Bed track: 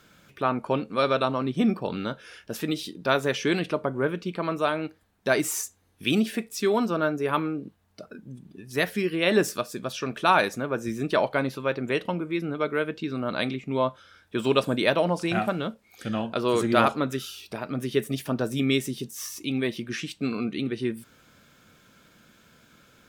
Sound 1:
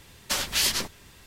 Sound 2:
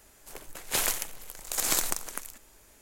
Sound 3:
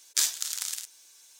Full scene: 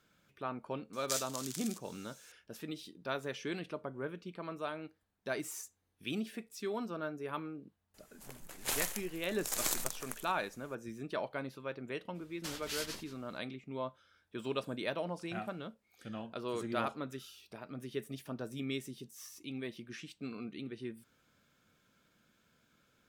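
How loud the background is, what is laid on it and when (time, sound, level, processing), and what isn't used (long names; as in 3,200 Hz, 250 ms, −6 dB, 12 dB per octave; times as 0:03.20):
bed track −14.5 dB
0:00.93: mix in 3 −11.5 dB + upward compression, threshold −37 dBFS
0:07.94: mix in 2 −7.5 dB
0:12.14: mix in 1 −16.5 dB, fades 0.02 s + single-tap delay 179 ms −14 dB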